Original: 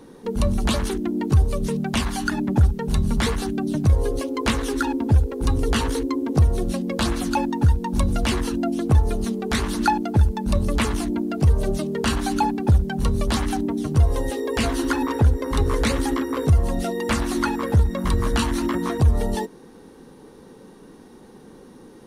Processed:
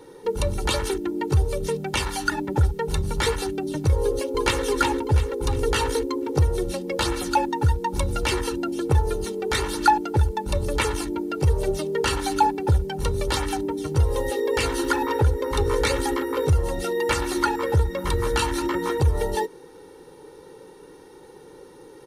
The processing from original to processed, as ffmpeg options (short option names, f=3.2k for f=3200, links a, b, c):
-filter_complex "[0:a]asplit=2[a][b];[b]afade=t=in:st=3.99:d=0.01,afade=t=out:st=4.64:d=0.01,aecho=0:1:350|700|1050|1400|1750:0.530884|0.212354|0.0849415|0.0339766|0.0135906[c];[a][c]amix=inputs=2:normalize=0,lowshelf=f=91:g=-10.5,aecho=1:1:2.2:0.82,volume=-1dB"